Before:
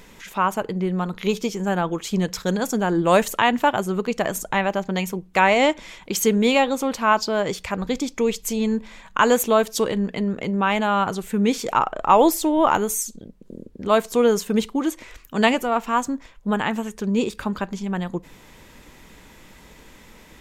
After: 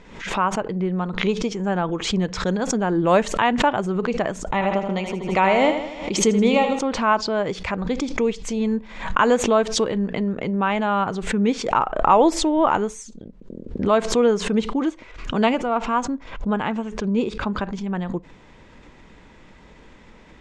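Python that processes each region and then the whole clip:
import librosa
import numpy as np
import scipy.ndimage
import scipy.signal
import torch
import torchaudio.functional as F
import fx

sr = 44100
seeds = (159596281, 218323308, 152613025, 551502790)

y = fx.chain(x, sr, fx.notch(hz=1600.0, q=5.2),
    fx.echo_feedback(ms=79, feedback_pct=55, wet_db=-8.0), at=(4.47, 6.79))
y = fx.chain(y, sr, fx.bessel_lowpass(hz=7900.0, order=2),
    fx.notch(hz=1800.0, q=13.0), at=(14.89, 17.53))
y = scipy.signal.sosfilt(scipy.signal.bessel(8, 5300.0, 'lowpass', norm='mag', fs=sr, output='sos'), y)
y = fx.high_shelf(y, sr, hz=2900.0, db=-7.0)
y = fx.pre_swell(y, sr, db_per_s=81.0)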